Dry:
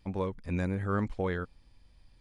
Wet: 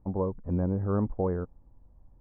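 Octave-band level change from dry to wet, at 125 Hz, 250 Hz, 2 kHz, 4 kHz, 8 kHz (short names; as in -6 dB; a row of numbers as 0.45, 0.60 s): +3.5 dB, +3.5 dB, -14.0 dB, under -30 dB, n/a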